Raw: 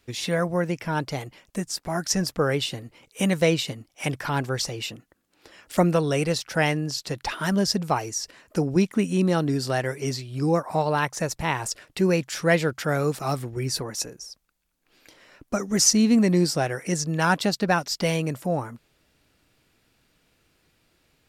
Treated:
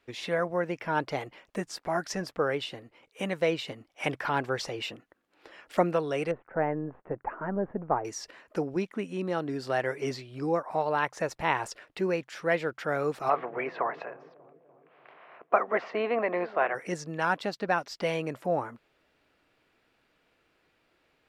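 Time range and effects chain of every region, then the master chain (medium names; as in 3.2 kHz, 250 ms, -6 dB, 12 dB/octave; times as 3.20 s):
6.31–8.05 s: partial rectifier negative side -3 dB + Gaussian low-pass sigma 6.2 samples
13.28–16.74 s: spectral peaks clipped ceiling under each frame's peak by 14 dB + cabinet simulation 270–2600 Hz, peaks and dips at 290 Hz -9 dB, 680 Hz +8 dB, 1.1 kHz +6 dB + feedback echo behind a low-pass 295 ms, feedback 61%, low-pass 520 Hz, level -18.5 dB
whole clip: treble shelf 4.8 kHz -6.5 dB; gain riding within 4 dB 0.5 s; tone controls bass -12 dB, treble -10 dB; trim -2 dB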